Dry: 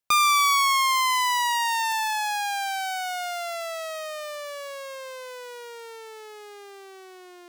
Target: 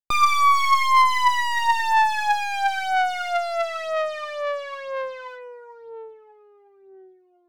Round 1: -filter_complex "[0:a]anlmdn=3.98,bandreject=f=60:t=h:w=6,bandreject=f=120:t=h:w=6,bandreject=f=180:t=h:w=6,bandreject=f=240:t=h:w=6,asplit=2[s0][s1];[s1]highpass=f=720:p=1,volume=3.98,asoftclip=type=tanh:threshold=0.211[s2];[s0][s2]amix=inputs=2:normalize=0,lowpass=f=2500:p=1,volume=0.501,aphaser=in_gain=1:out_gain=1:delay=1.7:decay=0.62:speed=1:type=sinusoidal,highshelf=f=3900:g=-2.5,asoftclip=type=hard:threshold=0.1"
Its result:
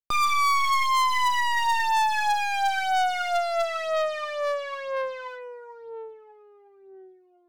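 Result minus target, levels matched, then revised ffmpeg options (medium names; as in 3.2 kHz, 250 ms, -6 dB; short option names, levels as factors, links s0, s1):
hard clipper: distortion +18 dB
-filter_complex "[0:a]anlmdn=3.98,bandreject=f=60:t=h:w=6,bandreject=f=120:t=h:w=6,bandreject=f=180:t=h:w=6,bandreject=f=240:t=h:w=6,asplit=2[s0][s1];[s1]highpass=f=720:p=1,volume=3.98,asoftclip=type=tanh:threshold=0.211[s2];[s0][s2]amix=inputs=2:normalize=0,lowpass=f=2500:p=1,volume=0.501,aphaser=in_gain=1:out_gain=1:delay=1.7:decay=0.62:speed=1:type=sinusoidal,highshelf=f=3900:g=-2.5,asoftclip=type=hard:threshold=0.282"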